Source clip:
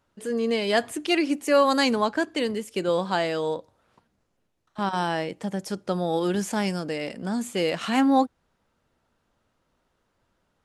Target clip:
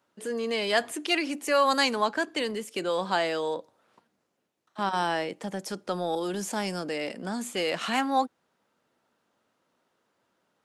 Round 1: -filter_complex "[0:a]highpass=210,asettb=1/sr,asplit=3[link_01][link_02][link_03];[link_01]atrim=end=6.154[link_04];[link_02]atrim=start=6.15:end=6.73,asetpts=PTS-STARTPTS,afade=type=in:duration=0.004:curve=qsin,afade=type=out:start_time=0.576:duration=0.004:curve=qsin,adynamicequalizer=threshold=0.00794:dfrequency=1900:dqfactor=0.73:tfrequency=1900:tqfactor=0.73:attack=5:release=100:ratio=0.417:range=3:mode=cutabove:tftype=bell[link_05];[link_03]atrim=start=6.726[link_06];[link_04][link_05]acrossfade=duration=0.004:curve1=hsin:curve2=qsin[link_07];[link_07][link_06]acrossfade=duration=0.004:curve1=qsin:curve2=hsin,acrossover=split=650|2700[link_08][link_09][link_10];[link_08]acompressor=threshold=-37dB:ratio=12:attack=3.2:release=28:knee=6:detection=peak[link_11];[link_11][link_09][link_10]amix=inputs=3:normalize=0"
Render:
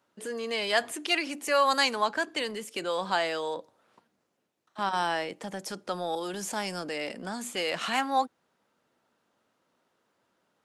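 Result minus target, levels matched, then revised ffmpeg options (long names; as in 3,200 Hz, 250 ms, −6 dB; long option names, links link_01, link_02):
downward compressor: peak gain reduction +6.5 dB
-filter_complex "[0:a]highpass=210,asettb=1/sr,asplit=3[link_01][link_02][link_03];[link_01]atrim=end=6.154[link_04];[link_02]atrim=start=6.15:end=6.73,asetpts=PTS-STARTPTS,afade=type=in:duration=0.004:curve=qsin,afade=type=out:start_time=0.576:duration=0.004:curve=qsin,adynamicequalizer=threshold=0.00794:dfrequency=1900:dqfactor=0.73:tfrequency=1900:tqfactor=0.73:attack=5:release=100:ratio=0.417:range=3:mode=cutabove:tftype=bell[link_05];[link_03]atrim=start=6.726[link_06];[link_04][link_05]acrossfade=duration=0.004:curve1=hsin:curve2=qsin[link_07];[link_07][link_06]acrossfade=duration=0.004:curve1=qsin:curve2=hsin,acrossover=split=650|2700[link_08][link_09][link_10];[link_08]acompressor=threshold=-30dB:ratio=12:attack=3.2:release=28:knee=6:detection=peak[link_11];[link_11][link_09][link_10]amix=inputs=3:normalize=0"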